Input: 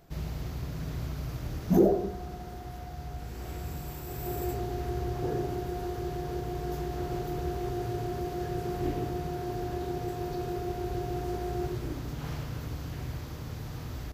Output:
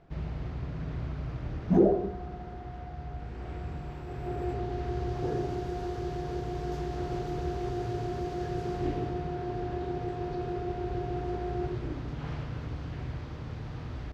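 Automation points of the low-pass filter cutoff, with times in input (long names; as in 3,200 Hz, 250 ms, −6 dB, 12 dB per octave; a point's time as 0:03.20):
0:04.37 2,600 Hz
0:05.29 6,000 Hz
0:08.67 6,000 Hz
0:09.24 3,300 Hz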